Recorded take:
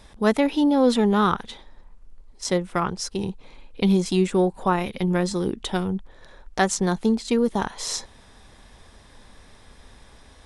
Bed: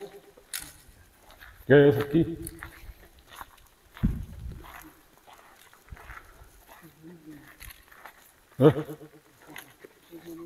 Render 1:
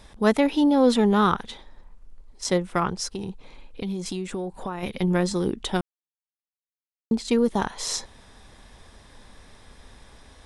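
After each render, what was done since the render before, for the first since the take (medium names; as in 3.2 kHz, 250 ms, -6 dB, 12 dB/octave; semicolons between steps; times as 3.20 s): 3.09–4.83 s: compression, threshold -27 dBFS; 5.81–7.11 s: mute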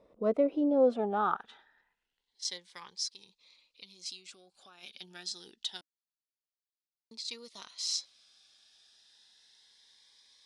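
band-pass sweep 490 Hz -> 4.5 kHz, 0.76–2.49 s; Shepard-style phaser rising 0.27 Hz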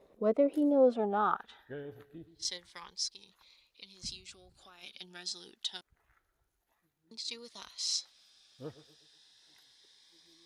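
add bed -26.5 dB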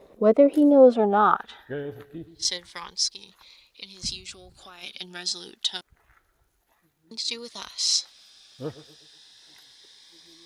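trim +10.5 dB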